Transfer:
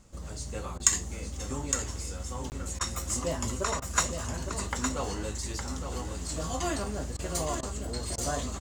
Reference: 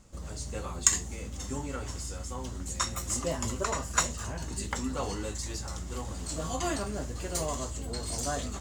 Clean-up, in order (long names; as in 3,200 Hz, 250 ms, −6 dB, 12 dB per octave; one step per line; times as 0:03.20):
repair the gap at 0:02.50, 19 ms
repair the gap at 0:00.78/0:02.79/0:03.80/0:07.17/0:07.61/0:08.16, 18 ms
echo removal 862 ms −7 dB